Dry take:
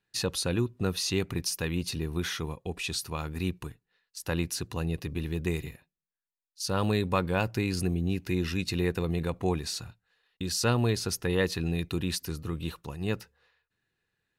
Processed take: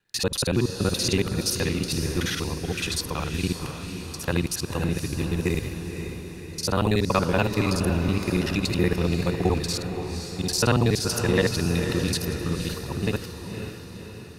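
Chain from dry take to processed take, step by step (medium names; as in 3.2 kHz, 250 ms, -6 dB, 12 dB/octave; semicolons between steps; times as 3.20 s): time reversed locally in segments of 47 ms; echo that smears into a reverb 527 ms, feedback 56%, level -7.5 dB; trim +5 dB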